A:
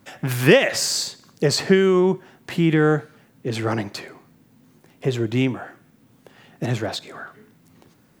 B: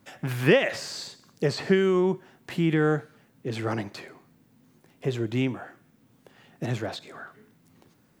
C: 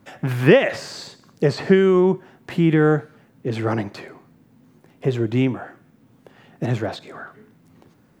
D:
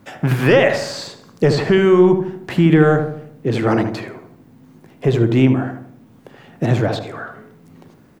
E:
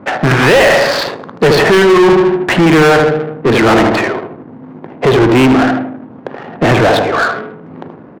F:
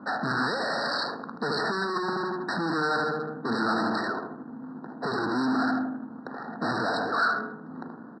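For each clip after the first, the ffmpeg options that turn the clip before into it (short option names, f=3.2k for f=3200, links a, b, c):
-filter_complex "[0:a]acrossover=split=3800[a][b];[b]acompressor=threshold=-36dB:ratio=4:attack=1:release=60[c];[a][c]amix=inputs=2:normalize=0,volume=-5.5dB"
-af "highshelf=f=2.5k:g=-8,volume=7dB"
-filter_complex "[0:a]apsyclip=12dB,asplit=2[a][b];[b]adelay=77,lowpass=f=1.1k:p=1,volume=-5.5dB,asplit=2[c][d];[d]adelay=77,lowpass=f=1.1k:p=1,volume=0.52,asplit=2[e][f];[f]adelay=77,lowpass=f=1.1k:p=1,volume=0.52,asplit=2[g][h];[h]adelay=77,lowpass=f=1.1k:p=1,volume=0.52,asplit=2[i][j];[j]adelay=77,lowpass=f=1.1k:p=1,volume=0.52,asplit=2[k][l];[l]adelay=77,lowpass=f=1.1k:p=1,volume=0.52,asplit=2[m][n];[n]adelay=77,lowpass=f=1.1k:p=1,volume=0.52[o];[c][e][g][i][k][m][o]amix=inputs=7:normalize=0[p];[a][p]amix=inputs=2:normalize=0,volume=-6.5dB"
-filter_complex "[0:a]asplit=2[a][b];[b]adelay=135,lowpass=f=3.6k:p=1,volume=-18dB,asplit=2[c][d];[d]adelay=135,lowpass=f=3.6k:p=1,volume=0.33,asplit=2[e][f];[f]adelay=135,lowpass=f=3.6k:p=1,volume=0.33[g];[a][c][e][g]amix=inputs=4:normalize=0,adynamicsmooth=sensitivity=5.5:basefreq=640,asplit=2[h][i];[i]highpass=f=720:p=1,volume=30dB,asoftclip=type=tanh:threshold=-1dB[j];[h][j]amix=inputs=2:normalize=0,lowpass=f=3.2k:p=1,volume=-6dB"
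-af "asoftclip=type=tanh:threshold=-16.5dB,highpass=210,equalizer=f=230:t=q:w=4:g=6,equalizer=f=380:t=q:w=4:g=-7,equalizer=f=560:t=q:w=4:g=-8,equalizer=f=1.4k:t=q:w=4:g=7,equalizer=f=2k:t=q:w=4:g=-8,equalizer=f=3.4k:t=q:w=4:g=5,lowpass=f=6.5k:w=0.5412,lowpass=f=6.5k:w=1.3066,afftfilt=real='re*eq(mod(floor(b*sr/1024/1900),2),0)':imag='im*eq(mod(floor(b*sr/1024/1900),2),0)':win_size=1024:overlap=0.75,volume=-7.5dB"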